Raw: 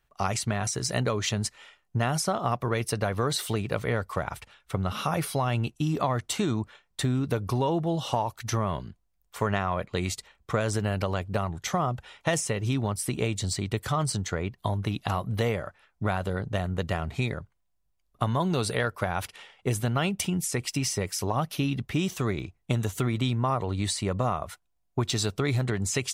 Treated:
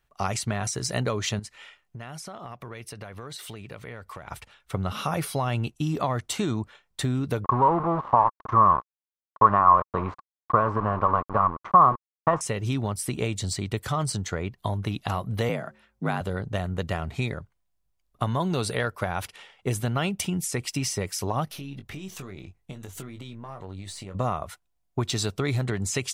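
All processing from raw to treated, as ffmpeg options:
ffmpeg -i in.wav -filter_complex "[0:a]asettb=1/sr,asplit=3[link_01][link_02][link_03];[link_01]atrim=end=1.394[link_04];[link_02]atrim=start=1.39:end=4.29,asetpts=PTS-STARTPTS,afade=type=in:duration=0.004:curve=qsin,afade=type=out:start_time=2.896:duration=0.004:curve=qsin,acompressor=threshold=-39dB:ratio=4:attack=3.2:release=140:knee=1:detection=peak,equalizer=frequency=2300:width_type=o:width=1.3:gain=4.5[link_05];[link_03]atrim=start=4.286[link_06];[link_04][link_05]acrossfade=duration=0.004:curve1=hsin:curve2=qsin[link_07];[link_07][link_06]acrossfade=duration=0.004:curve1=qsin:curve2=hsin,asettb=1/sr,asplit=3[link_08][link_09][link_10];[link_08]atrim=end=7.444[link_11];[link_09]atrim=start=7.44:end=12.41,asetpts=PTS-STARTPTS,afade=type=in:duration=0.004:curve=qsin,afade=type=out:start_time=4.966:duration=0.004:curve=qsin,aeval=exprs='val(0)*gte(abs(val(0)),0.0316)':channel_layout=same,lowpass=frequency=1100:width_type=q:width=10[link_12];[link_10]atrim=start=12.406[link_13];[link_11][link_12]acrossfade=duration=0.004:curve1=hsin:curve2=qsin[link_14];[link_14][link_13]acrossfade=duration=0.004:curve1=qsin:curve2=hsin,asettb=1/sr,asplit=3[link_15][link_16][link_17];[link_15]atrim=end=15.494[link_18];[link_16]atrim=start=15.49:end=16.21,asetpts=PTS-STARTPTS,afade=type=in:duration=0.004:curve=qsin,afade=type=out:start_time=0.716:duration=0.004:curve=qsin,bandreject=frequency=161:width_type=h:width=4,bandreject=frequency=322:width_type=h:width=4,bandreject=frequency=483:width_type=h:width=4,afreqshift=53[link_19];[link_17]atrim=start=16.206[link_20];[link_18][link_19]acrossfade=duration=0.004:curve1=hsin:curve2=qsin[link_21];[link_21][link_20]acrossfade=duration=0.004:curve1=qsin:curve2=hsin,asettb=1/sr,asplit=3[link_22][link_23][link_24];[link_22]atrim=end=21.454[link_25];[link_23]atrim=start=21.45:end=24.15,asetpts=PTS-STARTPTS,afade=type=in:duration=0.004:curve=qsin,afade=type=out:start_time=2.696:duration=0.004:curve=qsin,aeval=exprs='if(lt(val(0),0),0.708*val(0),val(0))':channel_layout=same,acompressor=threshold=-35dB:ratio=12:attack=3.2:release=140:knee=1:detection=peak,asplit=2[link_26][link_27];[link_27]adelay=21,volume=-7.5dB[link_28];[link_26][link_28]amix=inputs=2:normalize=0,atrim=end_sample=119070[link_29];[link_24]atrim=start=24.146[link_30];[link_25][link_29]acrossfade=duration=0.004:curve1=hsin:curve2=qsin[link_31];[link_31][link_30]acrossfade=duration=0.004:curve1=qsin:curve2=hsin" out.wav

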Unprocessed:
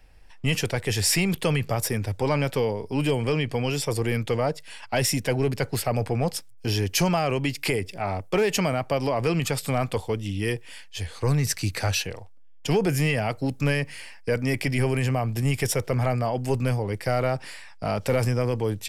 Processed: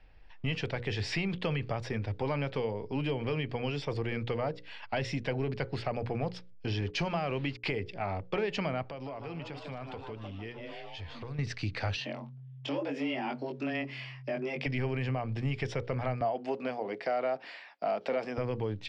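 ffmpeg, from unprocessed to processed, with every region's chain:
ffmpeg -i in.wav -filter_complex "[0:a]asettb=1/sr,asplit=3[link_01][link_02][link_03];[link_01]atrim=end=6.814[link_04];[link_02]atrim=start=6.81:end=7.72,asetpts=PTS-STARTPTS,afade=type=in:duration=0.004:curve=qsin,afade=type=out:start_time=0.906:duration=0.004:curve=qsin,agate=range=-33dB:threshold=-30dB:ratio=3:release=100:detection=peak,acrusher=bits=6:mix=0:aa=0.5[link_05];[link_03]atrim=start=7.716[link_06];[link_04][link_05]acrossfade=duration=0.004:curve1=hsin:curve2=qsin[link_07];[link_07][link_06]acrossfade=duration=0.004:curve1=qsin:curve2=hsin,asettb=1/sr,asplit=3[link_08][link_09][link_10];[link_08]atrim=end=8.854[link_11];[link_09]atrim=start=8.85:end=11.39,asetpts=PTS-STARTPTS,afade=type=in:duration=0.004:curve=qsin,afade=type=out:start_time=2.536:duration=0.004:curve=qsin,asplit=7[link_12][link_13][link_14][link_15][link_16][link_17][link_18];[link_13]adelay=150,afreqshift=140,volume=-10.5dB[link_19];[link_14]adelay=300,afreqshift=280,volume=-15.7dB[link_20];[link_15]adelay=450,afreqshift=420,volume=-20.9dB[link_21];[link_16]adelay=600,afreqshift=560,volume=-26.1dB[link_22];[link_17]adelay=750,afreqshift=700,volume=-31.3dB[link_23];[link_18]adelay=900,afreqshift=840,volume=-36.5dB[link_24];[link_12][link_19][link_20][link_21][link_22][link_23][link_24]amix=inputs=7:normalize=0,atrim=end_sample=112014,acompressor=threshold=-35dB:ratio=4:attack=3.2:release=140:knee=1:detection=peak[link_25];[link_10]atrim=start=11.386[link_26];[link_11][link_25]acrossfade=duration=0.004:curve1=hsin:curve2=qsin[link_27];[link_27][link_26]acrossfade=duration=0.004:curve1=qsin:curve2=hsin,asettb=1/sr,asplit=3[link_28][link_29][link_30];[link_28]atrim=end=11.964[link_31];[link_29]atrim=start=11.96:end=14.66,asetpts=PTS-STARTPTS,afade=type=in:duration=0.004:curve=qsin,afade=type=out:start_time=2.696:duration=0.004:curve=qsin,afreqshift=130,acompressor=threshold=-30dB:ratio=2:attack=3.2:release=140:knee=1:detection=peak,asplit=2[link_32][link_33];[link_33]adelay=21,volume=-3dB[link_34];[link_32][link_34]amix=inputs=2:normalize=0,atrim=end_sample=119070[link_35];[link_30]atrim=start=14.656[link_36];[link_31][link_35]acrossfade=duration=0.004:curve1=hsin:curve2=qsin[link_37];[link_37][link_36]acrossfade=duration=0.004:curve1=qsin:curve2=hsin,asettb=1/sr,asplit=3[link_38][link_39][link_40];[link_38]atrim=end=16.214[link_41];[link_39]atrim=start=16.21:end=18.38,asetpts=PTS-STARTPTS,afade=type=in:duration=0.004:curve=qsin,afade=type=out:start_time=2.166:duration=0.004:curve=qsin,highpass=frequency=230:width=0.5412,highpass=frequency=230:width=1.3066,equalizer=frequency=690:width=5.5:gain=9.5[link_42];[link_40]atrim=start=18.376[link_43];[link_41][link_42]acrossfade=duration=0.004:curve1=hsin:curve2=qsin[link_44];[link_44][link_43]acrossfade=duration=0.004:curve1=qsin:curve2=hsin,lowpass=frequency=4100:width=0.5412,lowpass=frequency=4100:width=1.3066,bandreject=frequency=60:width_type=h:width=6,bandreject=frequency=120:width_type=h:width=6,bandreject=frequency=180:width_type=h:width=6,bandreject=frequency=240:width_type=h:width=6,bandreject=frequency=300:width_type=h:width=6,bandreject=frequency=360:width_type=h:width=6,bandreject=frequency=420:width_type=h:width=6,bandreject=frequency=480:width_type=h:width=6,bandreject=frequency=540:width_type=h:width=6,acompressor=threshold=-28dB:ratio=2,volume=-3.5dB" out.wav

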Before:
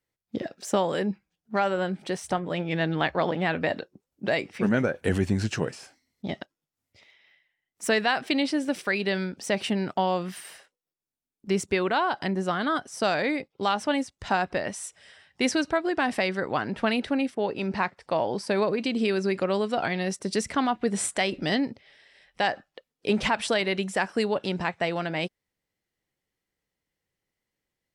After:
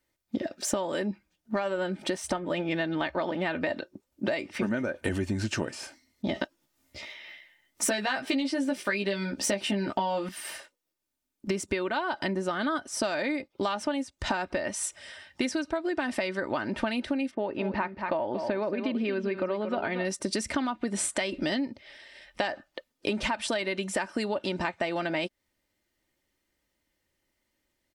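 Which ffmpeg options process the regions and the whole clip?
ffmpeg -i in.wav -filter_complex "[0:a]asettb=1/sr,asplit=3[link_01][link_02][link_03];[link_01]atrim=end=6.344[link_04];[link_02]atrim=start=6.34:end=10.29,asetpts=PTS-STARTPTS,afade=type=in:duration=0.004:curve=qsin,afade=type=out:start_time=3.946:duration=0.004:curve=qsin,acontrast=62,asplit=2[link_05][link_06];[link_06]adelay=15,volume=-2.5dB[link_07];[link_05][link_07]amix=inputs=2:normalize=0,atrim=end_sample=174195[link_08];[link_03]atrim=start=10.286[link_09];[link_04][link_08]acrossfade=duration=0.004:curve1=hsin:curve2=qsin[link_10];[link_10][link_09]acrossfade=duration=0.004:curve1=qsin:curve2=hsin,asettb=1/sr,asplit=3[link_11][link_12][link_13];[link_11]atrim=end=17.314[link_14];[link_12]atrim=start=17.31:end=20.05,asetpts=PTS-STARTPTS,afade=type=in:duration=0.004:curve=qsin,afade=type=out:start_time=2.736:duration=0.004:curve=qsin,lowpass=2600,aecho=1:1:230:0.299,atrim=end_sample=120834[link_15];[link_13]atrim=start=20.046[link_16];[link_14][link_15]acrossfade=duration=0.004:curve1=hsin:curve2=qsin[link_17];[link_17][link_16]acrossfade=duration=0.004:curve1=qsin:curve2=hsin,aecho=1:1:3.3:0.51,acompressor=threshold=-32dB:ratio=10,volume=6dB" out.wav

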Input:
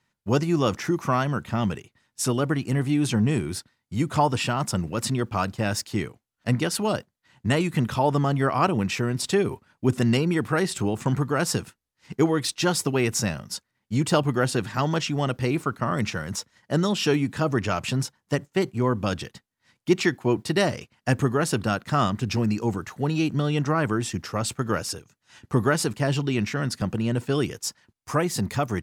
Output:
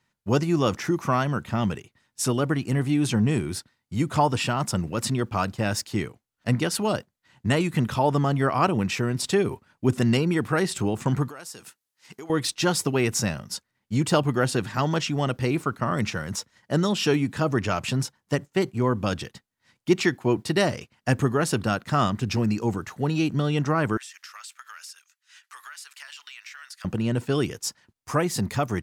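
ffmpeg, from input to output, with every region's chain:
ffmpeg -i in.wav -filter_complex "[0:a]asettb=1/sr,asplit=3[link_01][link_02][link_03];[link_01]atrim=end=11.284[link_04];[link_02]atrim=start=11.28:end=12.3,asetpts=PTS-STARTPTS,afade=type=in:duration=0.004:curve=qsin,afade=type=out:start_time=1.016:duration=0.004:curve=qsin,highpass=frequency=500:poles=1,highshelf=frequency=4800:gain=8,acompressor=threshold=-39dB:ratio=4:attack=3.2:release=140:knee=1:detection=peak[link_05];[link_03]atrim=start=12.296[link_06];[link_04][link_05]acrossfade=duration=0.004:curve1=hsin:curve2=qsin[link_07];[link_07][link_06]acrossfade=duration=0.004:curve1=qsin:curve2=hsin,asettb=1/sr,asplit=3[link_08][link_09][link_10];[link_08]atrim=end=23.974[link_11];[link_09]atrim=start=23.97:end=26.85,asetpts=PTS-STARTPTS,afade=type=in:duration=0.004:curve=qsin,afade=type=out:start_time=2.876:duration=0.004:curve=qsin,highpass=frequency=1400:width=0.5412,highpass=frequency=1400:width=1.3066,acrusher=bits=8:mode=log:mix=0:aa=0.000001,acompressor=threshold=-38dB:ratio=8:attack=3.2:release=140:knee=1:detection=peak[link_12];[link_10]atrim=start=26.846[link_13];[link_11][link_12]acrossfade=duration=0.004:curve1=hsin:curve2=qsin[link_14];[link_14][link_13]acrossfade=duration=0.004:curve1=qsin:curve2=hsin" out.wav

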